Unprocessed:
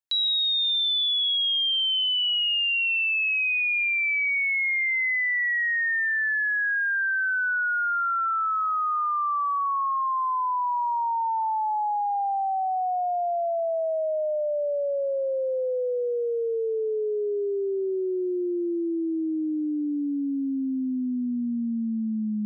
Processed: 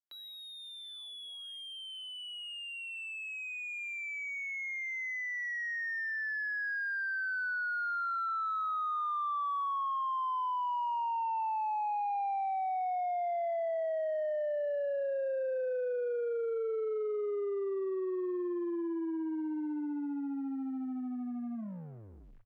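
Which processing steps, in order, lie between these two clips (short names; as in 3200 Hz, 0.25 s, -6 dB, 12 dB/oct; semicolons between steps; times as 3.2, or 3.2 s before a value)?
tape stop at the end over 0.90 s; companded quantiser 8-bit; on a send: echo 0.383 s -20.5 dB; on the sum: hard clip -25.5 dBFS, distortion -15 dB; three-band isolator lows -21 dB, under 230 Hz, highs -20 dB, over 2100 Hz; gain -5.5 dB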